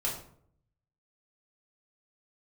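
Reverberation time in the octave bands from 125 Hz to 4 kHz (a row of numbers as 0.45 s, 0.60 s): 1.1 s, 0.75 s, 0.65 s, 0.55 s, 0.45 s, 0.35 s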